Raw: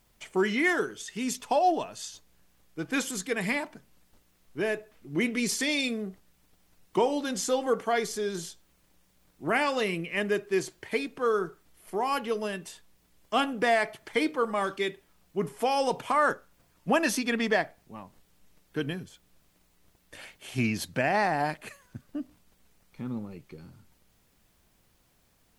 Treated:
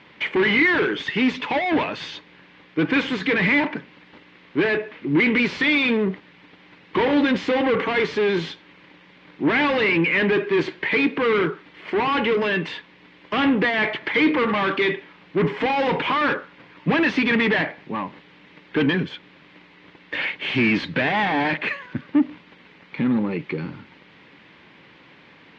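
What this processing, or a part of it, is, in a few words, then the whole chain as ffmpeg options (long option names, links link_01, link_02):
overdrive pedal into a guitar cabinet: -filter_complex "[0:a]asplit=2[link_01][link_02];[link_02]highpass=frequency=720:poles=1,volume=32dB,asoftclip=type=tanh:threshold=-12dB[link_03];[link_01][link_03]amix=inputs=2:normalize=0,lowpass=frequency=2800:poles=1,volume=-6dB,highpass=76,equalizer=frequency=160:width_type=q:width=4:gain=6,equalizer=frequency=290:width_type=q:width=4:gain=6,equalizer=frequency=690:width_type=q:width=4:gain=-10,equalizer=frequency=1300:width_type=q:width=4:gain=-5,equalizer=frequency=2100:width_type=q:width=4:gain=4,lowpass=frequency=3500:width=0.5412,lowpass=frequency=3500:width=1.3066"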